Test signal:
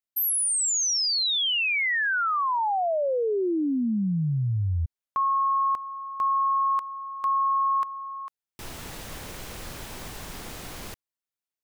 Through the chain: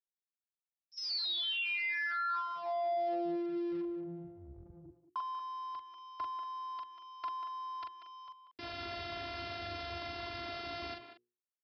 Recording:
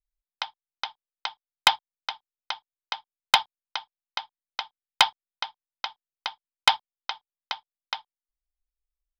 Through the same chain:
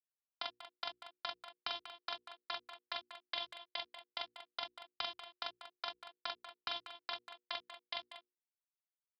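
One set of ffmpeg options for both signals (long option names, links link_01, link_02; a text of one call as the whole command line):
ffmpeg -i in.wav -filter_complex "[0:a]aeval=exprs='val(0)*sin(2*PI*84*n/s)':channel_layout=same,afftfilt=real='hypot(re,im)*cos(PI*b)':imag='0':win_size=512:overlap=0.75,acrossover=split=320|2600[link_01][link_02][link_03];[link_02]acompressor=threshold=-49dB:ratio=2:attack=70:release=545:knee=2.83:detection=peak[link_04];[link_01][link_04][link_03]amix=inputs=3:normalize=0,asplit=2[link_05][link_06];[link_06]adelay=42,volume=-5dB[link_07];[link_05][link_07]amix=inputs=2:normalize=0,anlmdn=0.000251,acompressor=threshold=-37dB:ratio=12:attack=1.1:release=45:knee=1:detection=peak,lowshelf=frequency=170:gain=6,aresample=11025,aeval=exprs='sgn(val(0))*max(abs(val(0))-0.0015,0)':channel_layout=same,aresample=44100,highpass=frequency=77:width=0.5412,highpass=frequency=77:width=1.3066,bandreject=frequency=60:width_type=h:width=6,bandreject=frequency=120:width_type=h:width=6,bandreject=frequency=180:width_type=h:width=6,bandreject=frequency=240:width_type=h:width=6,bandreject=frequency=300:width_type=h:width=6,bandreject=frequency=360:width_type=h:width=6,bandreject=frequency=420:width_type=h:width=6,bandreject=frequency=480:width_type=h:width=6,asplit=2[link_08][link_09];[link_09]adelay=190,highpass=300,lowpass=3400,asoftclip=type=hard:threshold=-36dB,volume=-9dB[link_10];[link_08][link_10]amix=inputs=2:normalize=0,volume=5.5dB" out.wav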